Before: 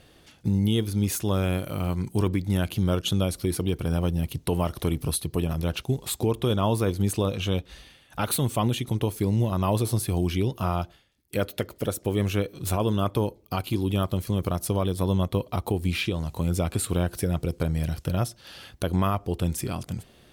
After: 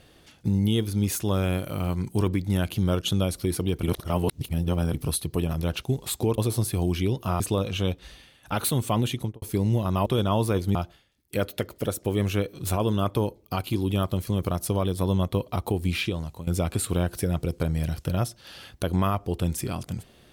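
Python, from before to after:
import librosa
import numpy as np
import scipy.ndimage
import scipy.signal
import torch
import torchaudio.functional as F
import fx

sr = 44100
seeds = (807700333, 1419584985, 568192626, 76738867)

y = fx.studio_fade_out(x, sr, start_s=8.84, length_s=0.25)
y = fx.edit(y, sr, fx.reverse_span(start_s=3.83, length_s=1.11),
    fx.swap(start_s=6.38, length_s=0.69, other_s=9.73, other_length_s=1.02),
    fx.fade_out_to(start_s=15.96, length_s=0.51, curve='qsin', floor_db=-15.5), tone=tone)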